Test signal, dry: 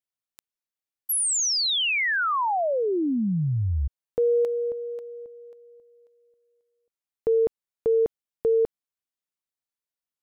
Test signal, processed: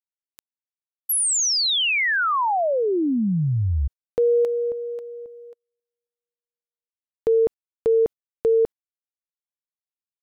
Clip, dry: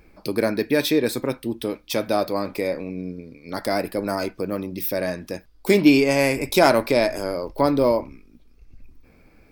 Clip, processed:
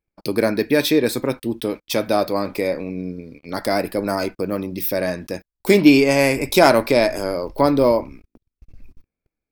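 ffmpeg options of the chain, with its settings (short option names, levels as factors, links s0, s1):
-af "agate=range=0.0158:threshold=0.00501:ratio=16:release=48:detection=rms,volume=1.41"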